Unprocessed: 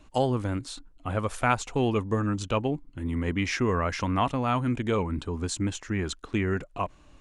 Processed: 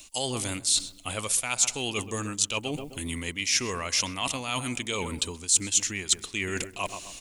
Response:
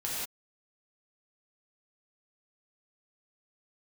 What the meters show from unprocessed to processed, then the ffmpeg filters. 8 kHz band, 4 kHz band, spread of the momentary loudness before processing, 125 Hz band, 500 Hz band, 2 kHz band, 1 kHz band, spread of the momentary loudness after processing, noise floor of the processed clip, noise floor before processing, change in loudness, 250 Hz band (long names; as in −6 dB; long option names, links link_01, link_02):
+16.5 dB, +10.5 dB, 7 LU, −9.0 dB, −6.5 dB, +1.5 dB, −6.5 dB, 10 LU, −49 dBFS, −55 dBFS, +1.5 dB, −7.5 dB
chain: -filter_complex "[0:a]lowshelf=frequency=280:gain=-6,aexciter=amount=4.5:drive=5.7:freq=2200,asplit=2[link_01][link_02];[link_02]adelay=130,lowpass=frequency=1400:poles=1,volume=-14dB,asplit=2[link_03][link_04];[link_04]adelay=130,lowpass=frequency=1400:poles=1,volume=0.45,asplit=2[link_05][link_06];[link_06]adelay=130,lowpass=frequency=1400:poles=1,volume=0.45,asplit=2[link_07][link_08];[link_08]adelay=130,lowpass=frequency=1400:poles=1,volume=0.45[link_09];[link_01][link_03][link_05][link_07][link_09]amix=inputs=5:normalize=0,areverse,acompressor=threshold=-34dB:ratio=6,areverse,highshelf=frequency=4600:gain=12,volume=4.5dB"